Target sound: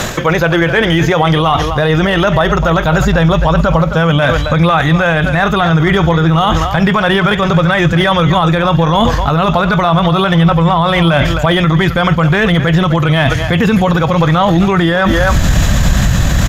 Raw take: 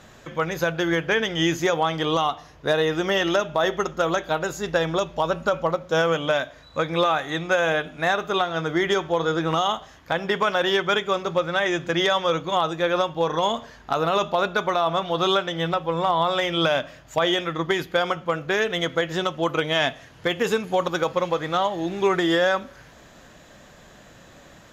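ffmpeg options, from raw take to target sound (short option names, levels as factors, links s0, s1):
-filter_complex "[0:a]acrossover=split=790|2300[s0][s1][s2];[s2]asoftclip=type=hard:threshold=0.0282[s3];[s0][s1][s3]amix=inputs=3:normalize=0,highshelf=f=5900:g=7.5,acrossover=split=3700[s4][s5];[s5]acompressor=threshold=0.00316:ratio=4:attack=1:release=60[s6];[s4][s6]amix=inputs=2:normalize=0,asubboost=boost=10.5:cutoff=120,asplit=2[s7][s8];[s8]adelay=390,highpass=300,lowpass=3400,asoftclip=type=hard:threshold=0.168,volume=0.2[s9];[s7][s9]amix=inputs=2:normalize=0,atempo=1.5,areverse,acompressor=threshold=0.0178:ratio=16,areverse,alimiter=level_in=53.1:limit=0.891:release=50:level=0:latency=1,volume=0.891"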